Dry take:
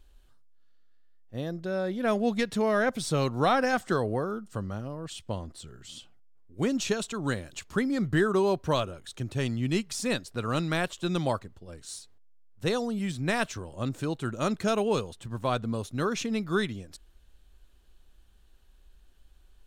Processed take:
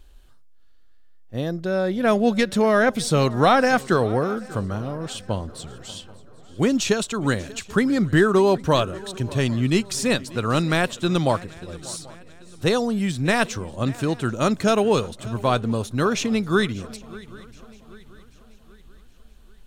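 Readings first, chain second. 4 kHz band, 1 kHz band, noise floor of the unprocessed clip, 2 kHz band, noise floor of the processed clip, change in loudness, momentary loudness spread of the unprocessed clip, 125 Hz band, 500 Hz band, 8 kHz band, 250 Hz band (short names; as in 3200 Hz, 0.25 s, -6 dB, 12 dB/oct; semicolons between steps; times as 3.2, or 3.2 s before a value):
+7.5 dB, +7.5 dB, -58 dBFS, +7.5 dB, -48 dBFS, +7.5 dB, 13 LU, +7.5 dB, +7.5 dB, +7.5 dB, +7.5 dB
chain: swung echo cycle 0.785 s, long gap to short 3:1, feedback 42%, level -20.5 dB; gain +7.5 dB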